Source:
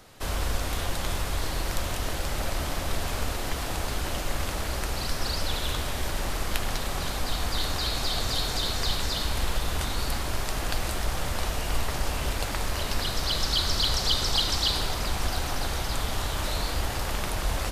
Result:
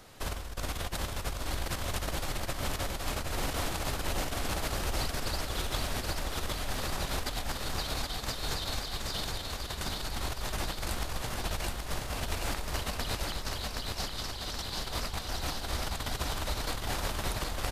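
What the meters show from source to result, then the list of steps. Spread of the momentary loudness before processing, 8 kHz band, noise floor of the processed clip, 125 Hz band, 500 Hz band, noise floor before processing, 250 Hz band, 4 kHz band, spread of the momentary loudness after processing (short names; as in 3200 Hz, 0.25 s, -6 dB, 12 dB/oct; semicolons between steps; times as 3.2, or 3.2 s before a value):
7 LU, -5.0 dB, -39 dBFS, -5.5 dB, -4.5 dB, -31 dBFS, -4.0 dB, -7.5 dB, 3 LU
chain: negative-ratio compressor -30 dBFS, ratio -0.5; on a send: feedback echo 0.773 s, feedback 60%, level -3.5 dB; on the sum: gain -5 dB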